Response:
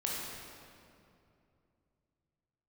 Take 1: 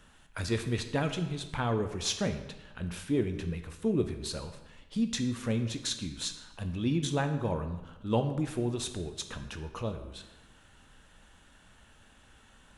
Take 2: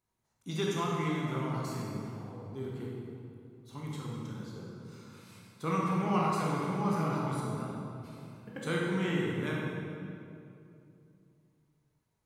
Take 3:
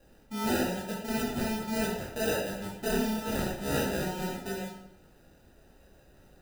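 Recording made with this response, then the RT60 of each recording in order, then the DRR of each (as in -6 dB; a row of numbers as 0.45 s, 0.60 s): 2; 1.1 s, 2.6 s, 0.75 s; 6.5 dB, -4.5 dB, -5.0 dB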